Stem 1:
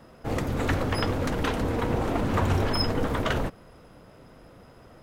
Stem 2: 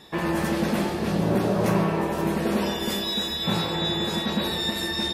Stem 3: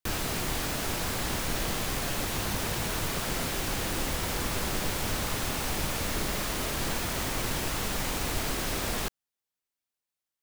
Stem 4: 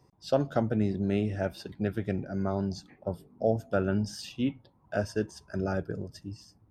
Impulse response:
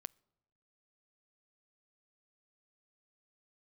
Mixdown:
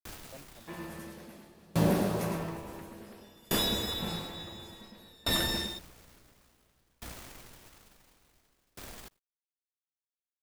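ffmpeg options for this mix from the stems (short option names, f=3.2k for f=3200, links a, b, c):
-filter_complex "[0:a]aeval=exprs='val(0)+0.00631*(sin(2*PI*60*n/s)+sin(2*PI*2*60*n/s)/2+sin(2*PI*3*60*n/s)/3+sin(2*PI*4*60*n/s)/4+sin(2*PI*5*60*n/s)/5)':c=same,acompressor=threshold=-27dB:ratio=6,adelay=2100,volume=-3dB[a];[1:a]highshelf=f=7.4k:g=10.5,adelay=550,volume=-2.5dB,asplit=2[b][c];[c]volume=-4dB[d];[2:a]volume=-13.5dB,asplit=2[e][f];[f]volume=-21dB[g];[3:a]volume=-19.5dB[h];[d][g]amix=inputs=2:normalize=0,aecho=0:1:109:1[i];[a][b][e][h][i]amix=inputs=5:normalize=0,acrusher=bits=8:dc=4:mix=0:aa=0.000001,aeval=exprs='val(0)*pow(10,-33*if(lt(mod(0.57*n/s,1),2*abs(0.57)/1000),1-mod(0.57*n/s,1)/(2*abs(0.57)/1000),(mod(0.57*n/s,1)-2*abs(0.57)/1000)/(1-2*abs(0.57)/1000))/20)':c=same"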